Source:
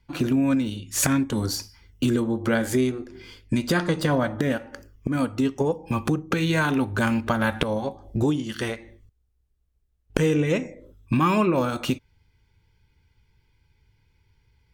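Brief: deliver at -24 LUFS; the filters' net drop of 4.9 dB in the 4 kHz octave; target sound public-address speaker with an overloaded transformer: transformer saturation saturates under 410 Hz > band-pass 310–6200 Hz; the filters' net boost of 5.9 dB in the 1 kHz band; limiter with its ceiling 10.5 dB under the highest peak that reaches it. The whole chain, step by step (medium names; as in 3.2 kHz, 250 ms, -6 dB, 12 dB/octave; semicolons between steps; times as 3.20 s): peaking EQ 1 kHz +7.5 dB; peaking EQ 4 kHz -6.5 dB; peak limiter -14 dBFS; transformer saturation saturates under 410 Hz; band-pass 310–6200 Hz; trim +5.5 dB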